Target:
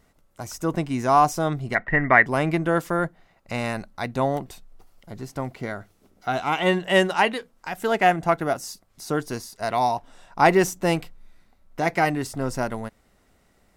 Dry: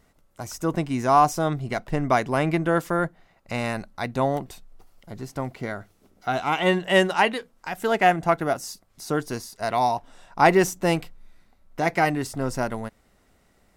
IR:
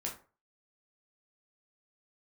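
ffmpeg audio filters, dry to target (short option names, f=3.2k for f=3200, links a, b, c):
-filter_complex "[0:a]asplit=3[a][b][c];[a]afade=t=out:st=1.74:d=0.02[d];[b]lowpass=f=1.9k:t=q:w=14,afade=t=in:st=1.74:d=0.02,afade=t=out:st=2.25:d=0.02[e];[c]afade=t=in:st=2.25:d=0.02[f];[d][e][f]amix=inputs=3:normalize=0"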